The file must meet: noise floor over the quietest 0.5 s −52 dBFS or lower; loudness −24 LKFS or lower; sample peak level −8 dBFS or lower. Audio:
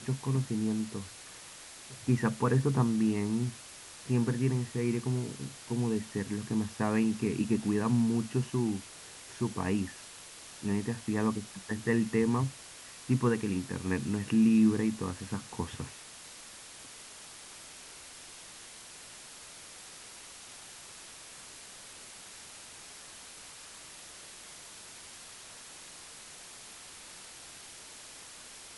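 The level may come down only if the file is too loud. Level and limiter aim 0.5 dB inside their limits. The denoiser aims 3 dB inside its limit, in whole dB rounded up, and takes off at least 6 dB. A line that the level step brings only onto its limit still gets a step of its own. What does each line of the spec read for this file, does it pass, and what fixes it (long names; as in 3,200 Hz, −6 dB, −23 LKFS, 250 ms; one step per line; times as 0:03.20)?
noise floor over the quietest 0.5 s −49 dBFS: out of spec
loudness −31.0 LKFS: in spec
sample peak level −13.5 dBFS: in spec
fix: broadband denoise 6 dB, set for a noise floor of −49 dBFS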